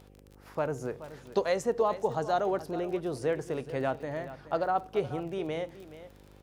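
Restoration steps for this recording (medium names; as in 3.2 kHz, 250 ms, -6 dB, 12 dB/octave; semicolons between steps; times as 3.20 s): de-click; de-hum 50.1 Hz, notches 11; inverse comb 426 ms -14.5 dB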